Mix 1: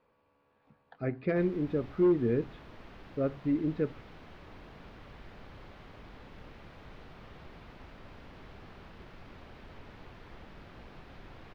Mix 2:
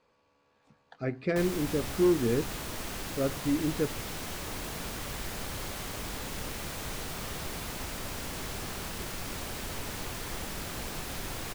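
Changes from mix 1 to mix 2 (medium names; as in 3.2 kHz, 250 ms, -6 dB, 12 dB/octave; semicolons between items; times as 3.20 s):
background +10.5 dB; master: remove distance through air 330 m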